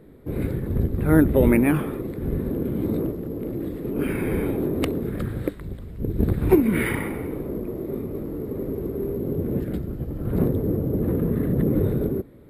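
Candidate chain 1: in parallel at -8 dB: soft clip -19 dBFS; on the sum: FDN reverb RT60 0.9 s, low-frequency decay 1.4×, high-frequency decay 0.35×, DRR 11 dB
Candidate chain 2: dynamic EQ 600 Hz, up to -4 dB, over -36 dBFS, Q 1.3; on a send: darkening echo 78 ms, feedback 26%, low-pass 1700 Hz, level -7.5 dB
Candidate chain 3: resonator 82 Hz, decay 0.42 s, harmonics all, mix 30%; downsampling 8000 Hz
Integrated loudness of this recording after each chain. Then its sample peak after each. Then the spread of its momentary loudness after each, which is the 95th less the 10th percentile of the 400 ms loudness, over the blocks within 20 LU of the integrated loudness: -21.5, -24.5, -27.0 LUFS; -2.5, -5.0, -6.0 dBFS; 11, 12, 12 LU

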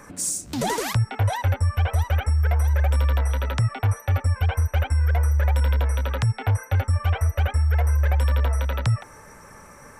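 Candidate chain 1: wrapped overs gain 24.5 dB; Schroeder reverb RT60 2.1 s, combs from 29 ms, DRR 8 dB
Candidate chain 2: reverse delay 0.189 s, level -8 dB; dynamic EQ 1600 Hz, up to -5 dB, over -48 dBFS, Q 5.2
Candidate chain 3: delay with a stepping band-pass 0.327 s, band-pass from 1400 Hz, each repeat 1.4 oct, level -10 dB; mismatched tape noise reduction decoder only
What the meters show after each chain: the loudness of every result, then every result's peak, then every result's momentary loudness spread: -28.0, -22.5, -23.0 LUFS; -19.0, -11.0, -12.5 dBFS; 2, 5, 4 LU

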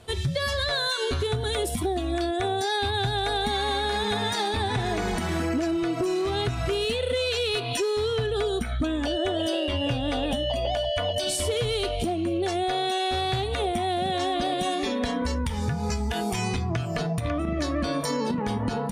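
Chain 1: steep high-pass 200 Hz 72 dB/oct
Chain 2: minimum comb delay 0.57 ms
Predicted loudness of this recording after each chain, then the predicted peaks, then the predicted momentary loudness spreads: -27.0, -28.5 LUFS; -15.0, -16.0 dBFS; 4, 2 LU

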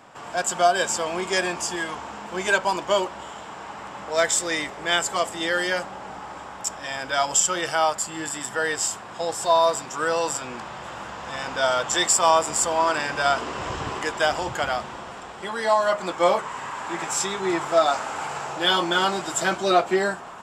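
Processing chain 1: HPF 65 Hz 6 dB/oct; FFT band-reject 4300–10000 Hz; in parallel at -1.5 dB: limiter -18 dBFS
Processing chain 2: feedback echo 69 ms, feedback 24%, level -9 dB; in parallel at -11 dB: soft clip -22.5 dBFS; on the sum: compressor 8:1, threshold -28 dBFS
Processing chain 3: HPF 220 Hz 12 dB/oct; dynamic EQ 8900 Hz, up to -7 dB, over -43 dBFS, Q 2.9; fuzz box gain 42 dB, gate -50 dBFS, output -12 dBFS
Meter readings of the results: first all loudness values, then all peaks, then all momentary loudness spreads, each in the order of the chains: -21.0, -31.5, -13.5 LUFS; -4.5, -14.5, -10.0 dBFS; 13, 4, 2 LU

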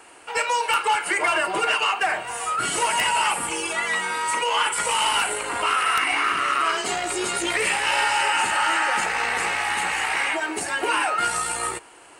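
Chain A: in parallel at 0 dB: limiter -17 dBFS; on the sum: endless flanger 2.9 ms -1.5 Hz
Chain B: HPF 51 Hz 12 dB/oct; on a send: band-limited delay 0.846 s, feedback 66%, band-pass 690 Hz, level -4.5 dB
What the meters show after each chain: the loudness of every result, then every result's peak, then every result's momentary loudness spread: -20.5, -21.0 LUFS; -8.0, -8.5 dBFS; 4, 4 LU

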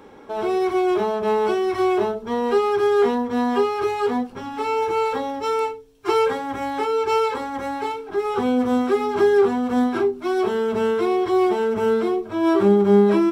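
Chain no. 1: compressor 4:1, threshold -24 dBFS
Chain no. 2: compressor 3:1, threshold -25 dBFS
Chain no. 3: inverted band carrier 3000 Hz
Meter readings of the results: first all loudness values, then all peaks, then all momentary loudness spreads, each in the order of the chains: -27.0, -27.0, -17.5 LUFS; -14.0, -14.0, -5.5 dBFS; 4, 4, 10 LU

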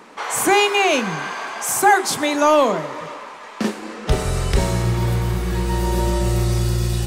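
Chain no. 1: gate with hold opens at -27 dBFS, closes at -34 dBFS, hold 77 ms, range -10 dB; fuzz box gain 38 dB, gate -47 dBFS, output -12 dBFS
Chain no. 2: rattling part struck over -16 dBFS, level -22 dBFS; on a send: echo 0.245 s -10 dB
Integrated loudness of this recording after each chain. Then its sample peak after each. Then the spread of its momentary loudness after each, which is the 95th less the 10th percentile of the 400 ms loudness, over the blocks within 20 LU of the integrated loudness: -14.0, -19.0 LUFS; -9.0, -4.0 dBFS; 3, 11 LU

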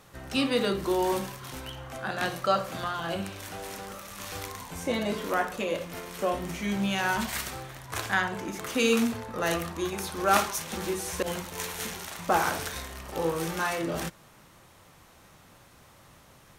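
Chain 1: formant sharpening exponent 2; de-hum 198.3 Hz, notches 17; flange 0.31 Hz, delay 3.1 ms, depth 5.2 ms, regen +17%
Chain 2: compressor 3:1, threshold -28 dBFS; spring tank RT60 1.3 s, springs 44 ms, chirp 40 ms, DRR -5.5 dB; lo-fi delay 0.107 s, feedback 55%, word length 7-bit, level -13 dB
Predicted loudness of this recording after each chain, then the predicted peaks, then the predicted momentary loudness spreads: -34.0, -26.5 LUFS; -12.0, -11.0 dBFS; 14, 10 LU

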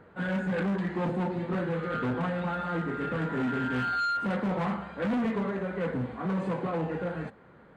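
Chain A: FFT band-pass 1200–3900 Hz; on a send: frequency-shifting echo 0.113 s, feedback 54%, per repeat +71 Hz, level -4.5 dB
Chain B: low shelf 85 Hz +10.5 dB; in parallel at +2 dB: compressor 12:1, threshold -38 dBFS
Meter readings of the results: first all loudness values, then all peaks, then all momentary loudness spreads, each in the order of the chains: -35.0, -27.0 LUFS; -20.5, -19.5 dBFS; 15, 4 LU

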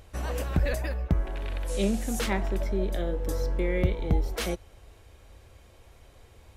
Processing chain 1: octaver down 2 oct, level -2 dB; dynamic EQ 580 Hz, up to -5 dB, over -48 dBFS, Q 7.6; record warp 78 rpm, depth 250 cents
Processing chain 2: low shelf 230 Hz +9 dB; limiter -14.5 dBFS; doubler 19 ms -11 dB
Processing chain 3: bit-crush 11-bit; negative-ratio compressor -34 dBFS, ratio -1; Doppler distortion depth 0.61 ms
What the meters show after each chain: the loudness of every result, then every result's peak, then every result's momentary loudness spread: -29.0, -24.0, -36.5 LUFS; -9.5, -12.5, -20.5 dBFS; 7, 3, 14 LU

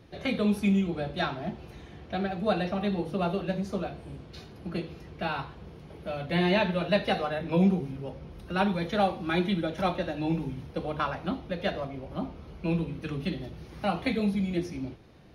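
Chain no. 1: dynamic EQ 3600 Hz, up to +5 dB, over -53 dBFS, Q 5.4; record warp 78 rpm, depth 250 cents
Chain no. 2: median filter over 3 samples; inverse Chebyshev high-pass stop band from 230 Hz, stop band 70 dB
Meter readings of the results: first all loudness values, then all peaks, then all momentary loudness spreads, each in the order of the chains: -30.0, -38.0 LUFS; -11.5, -18.0 dBFS; 15, 18 LU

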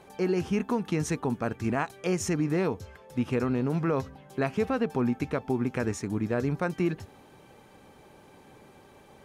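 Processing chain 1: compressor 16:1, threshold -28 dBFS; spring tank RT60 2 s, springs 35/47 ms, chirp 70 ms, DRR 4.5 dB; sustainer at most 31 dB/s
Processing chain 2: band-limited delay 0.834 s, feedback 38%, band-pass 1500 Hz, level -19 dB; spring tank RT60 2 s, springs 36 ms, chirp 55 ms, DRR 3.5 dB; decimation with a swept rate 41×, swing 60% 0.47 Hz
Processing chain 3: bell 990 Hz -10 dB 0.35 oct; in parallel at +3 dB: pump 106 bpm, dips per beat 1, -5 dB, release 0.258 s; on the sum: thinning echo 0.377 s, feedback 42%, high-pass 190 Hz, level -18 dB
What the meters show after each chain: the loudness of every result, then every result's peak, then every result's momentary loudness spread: -32.0, -27.5, -22.5 LUFS; -18.0, -14.5, -8.5 dBFS; 6, 6, 5 LU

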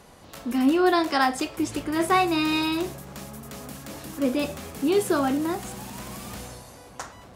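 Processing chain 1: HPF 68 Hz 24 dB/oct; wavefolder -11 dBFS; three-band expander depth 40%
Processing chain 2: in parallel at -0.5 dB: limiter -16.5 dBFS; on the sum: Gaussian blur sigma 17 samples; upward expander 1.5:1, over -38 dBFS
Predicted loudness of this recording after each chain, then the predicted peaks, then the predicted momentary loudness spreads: -23.5, -27.0 LUFS; -8.0, -10.5 dBFS; 22, 16 LU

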